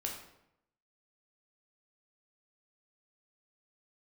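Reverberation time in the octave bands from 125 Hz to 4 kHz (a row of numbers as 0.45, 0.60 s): 0.90, 0.85, 0.85, 0.80, 0.70, 0.55 s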